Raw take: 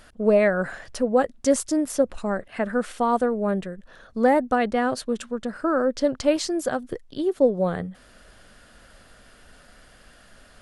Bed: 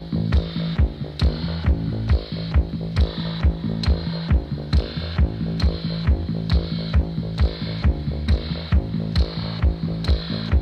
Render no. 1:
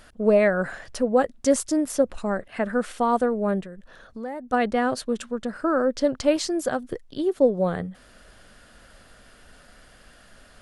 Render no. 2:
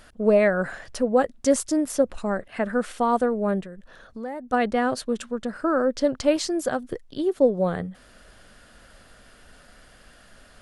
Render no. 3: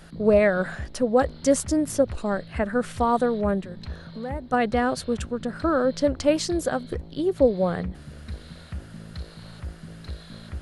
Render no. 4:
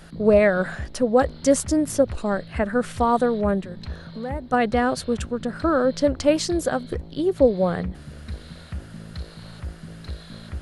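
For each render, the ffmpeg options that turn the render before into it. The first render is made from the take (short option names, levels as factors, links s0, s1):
-filter_complex "[0:a]asplit=3[s0][s1][s2];[s0]afade=t=out:st=3.61:d=0.02[s3];[s1]acompressor=threshold=0.0141:ratio=2.5:attack=3.2:release=140:knee=1:detection=peak,afade=t=in:st=3.61:d=0.02,afade=t=out:st=4.52:d=0.02[s4];[s2]afade=t=in:st=4.52:d=0.02[s5];[s3][s4][s5]amix=inputs=3:normalize=0"
-af anull
-filter_complex "[1:a]volume=0.15[s0];[0:a][s0]amix=inputs=2:normalize=0"
-af "volume=1.26"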